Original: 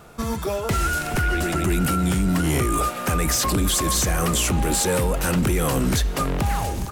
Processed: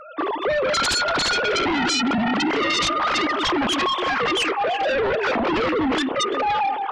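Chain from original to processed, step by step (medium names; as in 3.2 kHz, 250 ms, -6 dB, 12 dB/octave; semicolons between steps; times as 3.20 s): formants replaced by sine waves; compression 2:1, threshold -19 dBFS, peak gain reduction 5 dB; echo whose repeats swap between lows and highs 170 ms, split 1 kHz, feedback 55%, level -7.5 dB; on a send at -23.5 dB: reverberation RT60 0.35 s, pre-delay 22 ms; on the sum: sine folder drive 13 dB, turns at -9.5 dBFS; trim -8.5 dB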